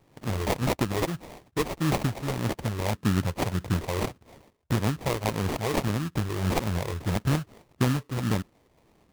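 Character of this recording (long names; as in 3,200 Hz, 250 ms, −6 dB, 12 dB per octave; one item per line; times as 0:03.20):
phaser sweep stages 6, 1.7 Hz, lowest notch 200–1,300 Hz
aliases and images of a low sample rate 1,500 Hz, jitter 20%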